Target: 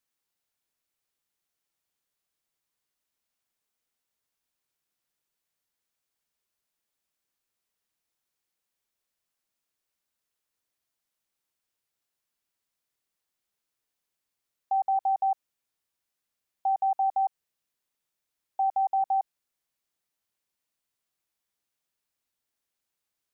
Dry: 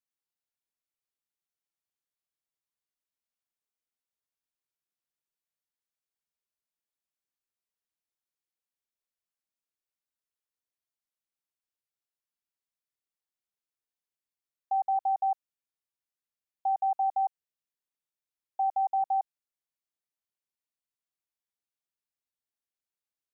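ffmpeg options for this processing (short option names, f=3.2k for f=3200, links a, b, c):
-af "alimiter=level_in=5.5dB:limit=-24dB:level=0:latency=1,volume=-5.5dB,volume=8.5dB"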